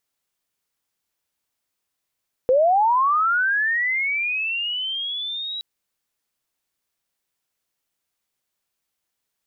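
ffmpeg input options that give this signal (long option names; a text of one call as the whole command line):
ffmpeg -f lavfi -i "aevalsrc='pow(10,(-13-14*t/3.12)/20)*sin(2*PI*(490*t+3410*t*t/(2*3.12)))':duration=3.12:sample_rate=44100" out.wav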